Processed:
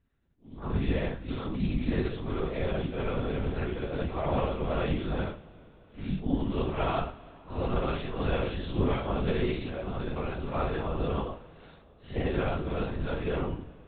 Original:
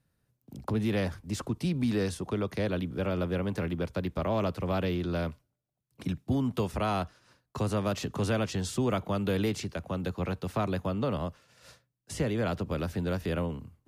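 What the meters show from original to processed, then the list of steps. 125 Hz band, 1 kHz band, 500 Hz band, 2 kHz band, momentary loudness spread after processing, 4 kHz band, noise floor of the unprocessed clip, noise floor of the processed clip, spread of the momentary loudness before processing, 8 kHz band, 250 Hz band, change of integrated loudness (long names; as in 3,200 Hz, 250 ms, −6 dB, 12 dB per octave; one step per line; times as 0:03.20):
−0.5 dB, +1.0 dB, 0.0 dB, 0.0 dB, 7 LU, −1.5 dB, −79 dBFS, −56 dBFS, 7 LU, below −35 dB, −1.5 dB, −0.5 dB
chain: random phases in long frames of 200 ms
linear-prediction vocoder at 8 kHz whisper
coupled-rooms reverb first 0.27 s, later 3.7 s, from −21 dB, DRR 7 dB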